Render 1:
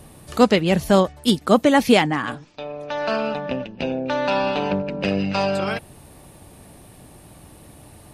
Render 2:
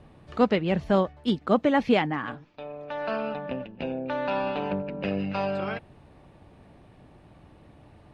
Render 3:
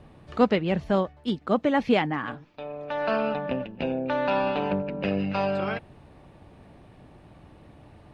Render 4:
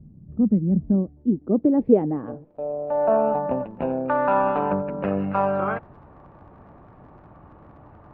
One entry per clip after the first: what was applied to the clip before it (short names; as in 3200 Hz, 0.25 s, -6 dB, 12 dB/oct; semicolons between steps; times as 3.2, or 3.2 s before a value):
LPF 2800 Hz 12 dB/oct; gain -6.5 dB
vocal rider within 5 dB 2 s
crackle 50/s -38 dBFS; low-pass sweep 190 Hz -> 1200 Hz, 0.36–4.03; gain +1.5 dB